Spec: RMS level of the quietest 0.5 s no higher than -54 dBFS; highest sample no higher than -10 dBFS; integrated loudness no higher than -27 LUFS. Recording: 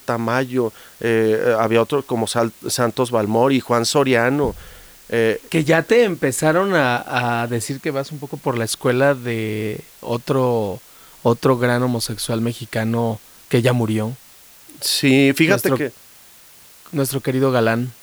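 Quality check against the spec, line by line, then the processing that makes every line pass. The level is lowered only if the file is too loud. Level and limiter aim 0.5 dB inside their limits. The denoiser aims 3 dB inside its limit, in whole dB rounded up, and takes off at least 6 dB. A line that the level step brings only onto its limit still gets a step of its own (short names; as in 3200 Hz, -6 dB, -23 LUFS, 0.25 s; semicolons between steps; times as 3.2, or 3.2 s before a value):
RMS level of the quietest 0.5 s -46 dBFS: fail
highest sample -3.5 dBFS: fail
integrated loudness -19.0 LUFS: fail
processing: gain -8.5 dB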